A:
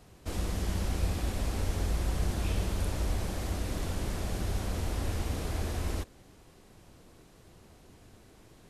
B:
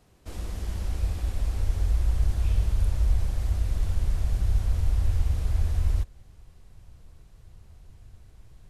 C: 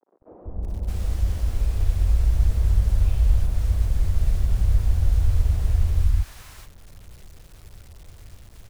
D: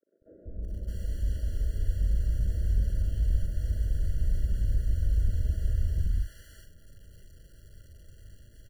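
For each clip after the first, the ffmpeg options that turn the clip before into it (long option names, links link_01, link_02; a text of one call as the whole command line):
ffmpeg -i in.wav -af "asubboost=boost=9:cutoff=92,volume=-5dB" out.wav
ffmpeg -i in.wav -filter_complex "[0:a]acrossover=split=270|380|1300[link_01][link_02][link_03][link_04];[link_04]alimiter=level_in=20dB:limit=-24dB:level=0:latency=1:release=217,volume=-20dB[link_05];[link_01][link_02][link_03][link_05]amix=inputs=4:normalize=0,acrusher=bits=8:mix=0:aa=0.000001,acrossover=split=290|900[link_06][link_07][link_08];[link_06]adelay=190[link_09];[link_08]adelay=620[link_10];[link_09][link_07][link_10]amix=inputs=3:normalize=0,volume=4.5dB" out.wav
ffmpeg -i in.wav -filter_complex "[0:a]aeval=exprs='clip(val(0),-1,0.2)':channel_layout=same,asplit=2[link_01][link_02];[link_02]adelay=41,volume=-7.5dB[link_03];[link_01][link_03]amix=inputs=2:normalize=0,afftfilt=real='re*eq(mod(floor(b*sr/1024/680),2),0)':imag='im*eq(mod(floor(b*sr/1024/680),2),0)':win_size=1024:overlap=0.75,volume=-7dB" out.wav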